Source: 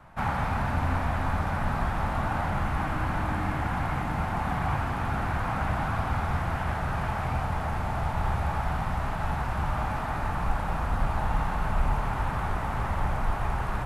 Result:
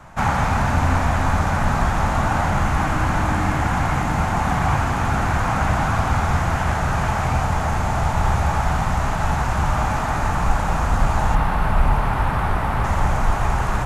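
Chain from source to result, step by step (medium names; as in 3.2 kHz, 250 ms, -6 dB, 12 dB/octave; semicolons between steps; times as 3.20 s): peaking EQ 6.7 kHz +11.5 dB 0.64 oct, from 11.35 s -2 dB, from 12.84 s +10 dB; trim +8.5 dB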